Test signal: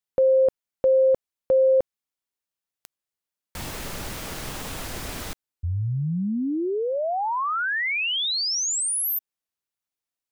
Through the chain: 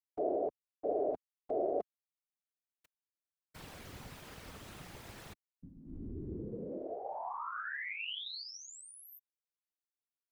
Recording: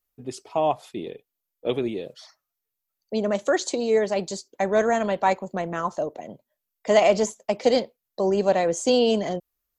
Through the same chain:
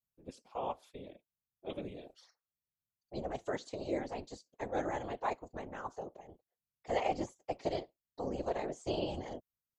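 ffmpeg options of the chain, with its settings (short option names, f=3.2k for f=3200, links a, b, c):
-filter_complex "[0:a]acrossover=split=4200[a][b];[b]acompressor=threshold=-41dB:ratio=4:attack=1:release=60[c];[a][c]amix=inputs=2:normalize=0,equalizer=f=95:w=3:g=-14.5,aeval=exprs='val(0)*sin(2*PI*110*n/s)':c=same,afftfilt=real='hypot(re,im)*cos(2*PI*random(0))':imag='hypot(re,im)*sin(2*PI*random(1))':win_size=512:overlap=0.75,volume=-6.5dB"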